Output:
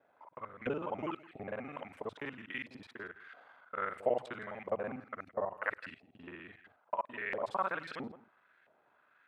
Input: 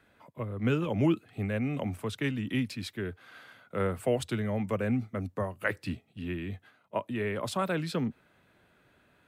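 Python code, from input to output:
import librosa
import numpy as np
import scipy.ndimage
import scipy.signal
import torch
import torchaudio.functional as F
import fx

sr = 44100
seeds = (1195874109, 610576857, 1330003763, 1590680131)

y = fx.local_reverse(x, sr, ms=41.0)
y = y + 10.0 ** (-17.5 / 20.0) * np.pad(y, (int(165 * sr / 1000.0), 0))[:len(y)]
y = fx.filter_lfo_bandpass(y, sr, shape='saw_up', hz=1.5, low_hz=630.0, high_hz=1900.0, q=2.1)
y = F.gain(torch.from_numpy(y), 3.0).numpy()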